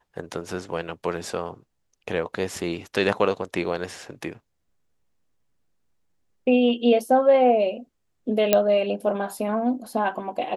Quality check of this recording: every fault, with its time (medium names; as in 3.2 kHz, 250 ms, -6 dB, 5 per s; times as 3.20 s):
8.53 s: pop -3 dBFS